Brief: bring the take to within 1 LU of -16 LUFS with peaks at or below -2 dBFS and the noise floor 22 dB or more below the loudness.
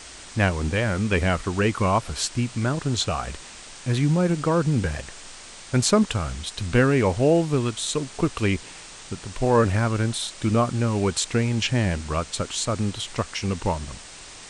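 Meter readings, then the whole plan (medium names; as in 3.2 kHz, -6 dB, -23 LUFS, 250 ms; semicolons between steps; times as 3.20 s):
noise floor -42 dBFS; noise floor target -46 dBFS; loudness -23.5 LUFS; peak level -4.5 dBFS; loudness target -16.0 LUFS
-> noise reduction 6 dB, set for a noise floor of -42 dBFS; trim +7.5 dB; peak limiter -2 dBFS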